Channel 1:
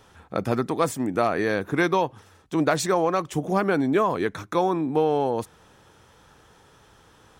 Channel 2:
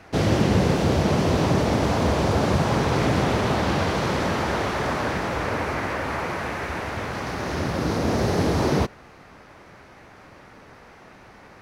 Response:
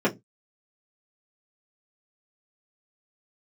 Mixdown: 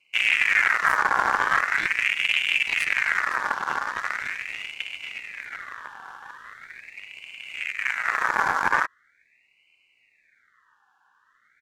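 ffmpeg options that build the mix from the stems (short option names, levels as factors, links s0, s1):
-filter_complex "[0:a]highpass=1200,volume=0.422[s0];[1:a]highpass=62,aeval=exprs='0.422*sin(PI/2*2*val(0)/0.422)':c=same,firequalizer=gain_entry='entry(710,0);entry(1200,-21);entry(4100,-9)':delay=0.05:min_phase=1,volume=0.708[s1];[s0][s1]amix=inputs=2:normalize=0,asuperstop=centerf=830:order=20:qfactor=0.95,aeval=exprs='0.335*(cos(1*acos(clip(val(0)/0.335,-1,1)))-cos(1*PI/2))+0.0944*(cos(3*acos(clip(val(0)/0.335,-1,1)))-cos(3*PI/2))':c=same,aeval=exprs='val(0)*sin(2*PI*1900*n/s+1900*0.35/0.41*sin(2*PI*0.41*n/s))':c=same"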